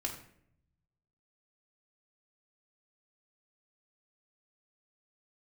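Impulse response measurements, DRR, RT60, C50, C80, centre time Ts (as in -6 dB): -1.5 dB, 0.65 s, 7.5 dB, 10.5 dB, 21 ms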